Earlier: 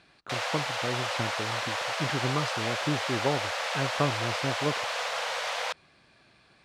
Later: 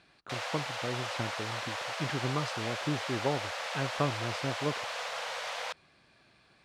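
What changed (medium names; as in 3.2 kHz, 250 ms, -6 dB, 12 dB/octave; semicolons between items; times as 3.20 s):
speech -3.0 dB; background -5.5 dB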